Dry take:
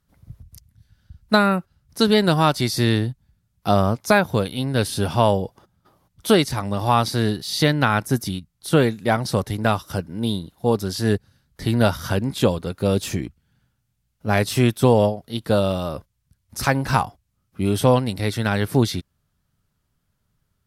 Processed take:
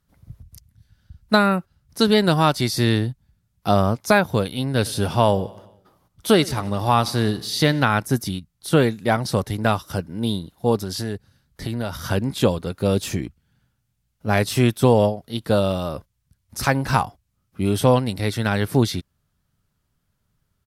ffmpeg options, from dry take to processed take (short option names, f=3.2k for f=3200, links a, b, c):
-filter_complex "[0:a]asplit=3[a][b][c];[a]afade=t=out:st=4.84:d=0.02[d];[b]aecho=1:1:91|182|273|364|455:0.0891|0.0517|0.03|0.0174|0.0101,afade=t=in:st=4.84:d=0.02,afade=t=out:st=7.83:d=0.02[e];[c]afade=t=in:st=7.83:d=0.02[f];[d][e][f]amix=inputs=3:normalize=0,asettb=1/sr,asplit=3[g][h][i];[g]atrim=end=10.814[j];[h]atrim=start=10.81:end=11.98,asetpts=PTS-STARTPTS,afade=t=in:d=0.004:c=qsin,afade=t=out:st=1.166:d=0.004:c=qsin,acompressor=threshold=-22dB:ratio=6:attack=3.2:release=140:knee=1:detection=peak[k];[i]atrim=start=11.976[l];[j][k]acrossfade=d=0.004:c1=hsin:c2=qsin[m];[m][l]acrossfade=d=0.004:c1=qsin:c2=hsin"